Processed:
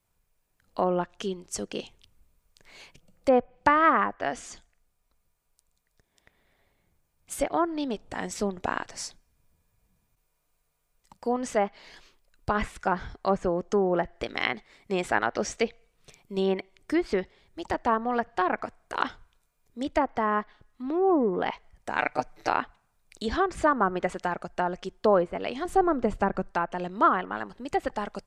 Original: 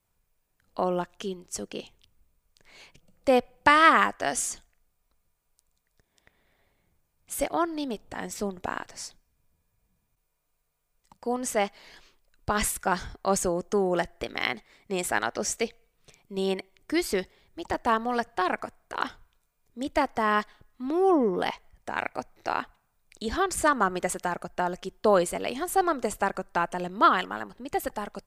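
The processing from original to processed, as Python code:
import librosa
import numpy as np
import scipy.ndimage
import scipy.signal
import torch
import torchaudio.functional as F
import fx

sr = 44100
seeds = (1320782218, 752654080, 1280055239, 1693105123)

y = fx.env_lowpass_down(x, sr, base_hz=1400.0, full_db=-20.5)
y = fx.low_shelf(y, sr, hz=310.0, db=11.5, at=(25.65, 26.51))
y = fx.rider(y, sr, range_db=3, speed_s=2.0)
y = fx.high_shelf(y, sr, hz=4700.0, db=-10.5, at=(20.82, 21.32))
y = fx.comb(y, sr, ms=6.7, depth=0.93, at=(21.98, 22.49))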